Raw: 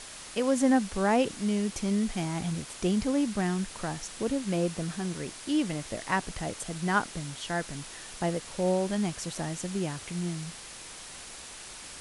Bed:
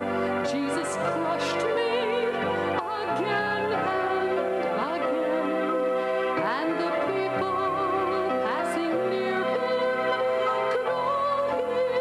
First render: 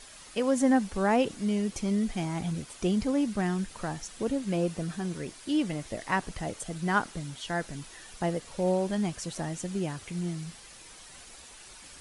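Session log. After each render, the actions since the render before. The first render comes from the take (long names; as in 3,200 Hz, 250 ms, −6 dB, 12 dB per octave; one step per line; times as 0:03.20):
broadband denoise 8 dB, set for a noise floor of −45 dBFS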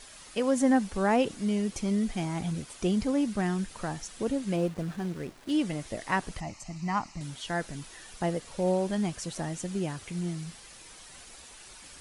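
0:04.56–0:05.51: slack as between gear wheels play −40.5 dBFS
0:06.40–0:07.21: phaser with its sweep stopped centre 2,300 Hz, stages 8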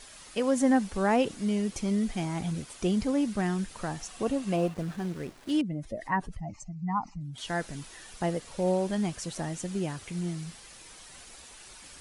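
0:04.00–0:04.74: hollow resonant body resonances 730/1,100/2,700 Hz, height 9 dB, ringing for 25 ms
0:05.61–0:07.38: expanding power law on the bin magnitudes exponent 1.9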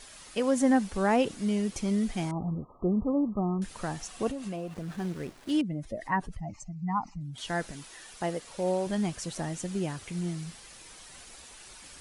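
0:02.31–0:03.62: linear-phase brick-wall low-pass 1,300 Hz
0:04.28–0:04.97: downward compressor, threshold −32 dBFS
0:07.71–0:08.87: low-shelf EQ 200 Hz −9 dB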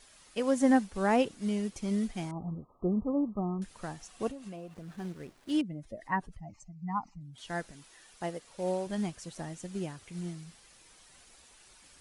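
expander for the loud parts 1.5 to 1, over −38 dBFS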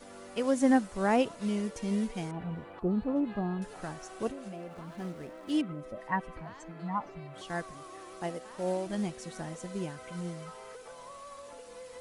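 mix in bed −22 dB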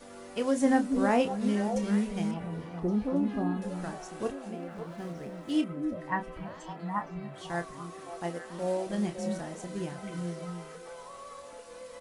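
double-tracking delay 29 ms −8.5 dB
echo through a band-pass that steps 280 ms, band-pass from 230 Hz, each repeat 1.4 octaves, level −3.5 dB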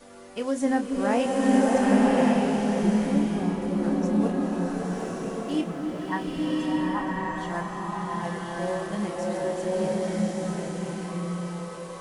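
slow-attack reverb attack 1,130 ms, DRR −4.5 dB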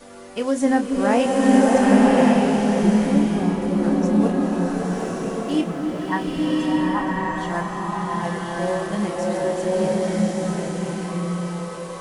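level +5.5 dB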